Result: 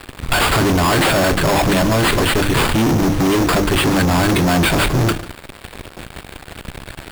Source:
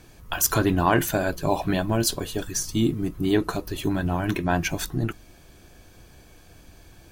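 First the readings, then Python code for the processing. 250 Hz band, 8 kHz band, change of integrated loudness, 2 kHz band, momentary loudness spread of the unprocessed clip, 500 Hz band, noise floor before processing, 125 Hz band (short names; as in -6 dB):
+8.5 dB, +4.5 dB, +9.5 dB, +12.0 dB, 8 LU, +9.0 dB, -51 dBFS, +9.5 dB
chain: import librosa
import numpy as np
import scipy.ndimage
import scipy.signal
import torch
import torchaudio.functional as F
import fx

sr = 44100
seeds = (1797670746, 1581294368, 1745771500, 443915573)

p1 = fx.high_shelf(x, sr, hz=11000.0, db=4.5)
p2 = fx.hum_notches(p1, sr, base_hz=50, count=7)
p3 = fx.over_compress(p2, sr, threshold_db=-26.0, ratio=-0.5)
p4 = p2 + (p3 * librosa.db_to_amplitude(-0.5))
p5 = fx.sample_hold(p4, sr, seeds[0], rate_hz=6000.0, jitter_pct=0)
p6 = fx.fuzz(p5, sr, gain_db=32.0, gate_db=-40.0)
y = p6 + 10.0 ** (-19.0 / 20.0) * np.pad(p6, (int(147 * sr / 1000.0), 0))[:len(p6)]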